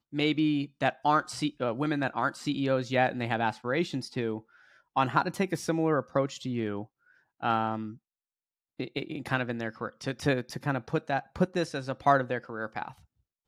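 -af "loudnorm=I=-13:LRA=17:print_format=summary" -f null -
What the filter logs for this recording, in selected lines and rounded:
Input Integrated:    -30.0 LUFS
Input True Peak:      -9.0 dBTP
Input LRA:             5.0 LU
Input Threshold:     -40.5 LUFS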